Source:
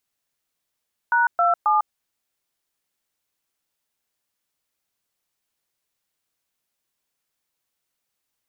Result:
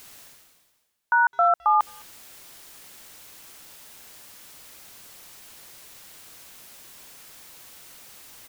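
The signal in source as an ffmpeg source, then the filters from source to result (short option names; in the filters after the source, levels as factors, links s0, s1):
-f lavfi -i "aevalsrc='0.126*clip(min(mod(t,0.269),0.15-mod(t,0.269))/0.002,0,1)*(eq(floor(t/0.269),0)*(sin(2*PI*941*mod(t,0.269))+sin(2*PI*1477*mod(t,0.269)))+eq(floor(t/0.269),1)*(sin(2*PI*697*mod(t,0.269))+sin(2*PI*1336*mod(t,0.269)))+eq(floor(t/0.269),2)*(sin(2*PI*852*mod(t,0.269))+sin(2*PI*1209*mod(t,0.269))))':d=0.807:s=44100"
-filter_complex "[0:a]areverse,acompressor=mode=upward:threshold=0.0891:ratio=2.5,areverse,asplit=2[s0][s1];[s1]adelay=210,highpass=300,lowpass=3400,asoftclip=type=hard:threshold=0.0944,volume=0.0501[s2];[s0][s2]amix=inputs=2:normalize=0"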